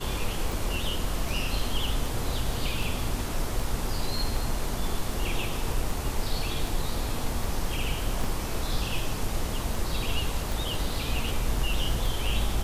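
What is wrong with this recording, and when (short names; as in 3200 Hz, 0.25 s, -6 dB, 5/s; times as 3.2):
tick 78 rpm
8.24 gap 2.9 ms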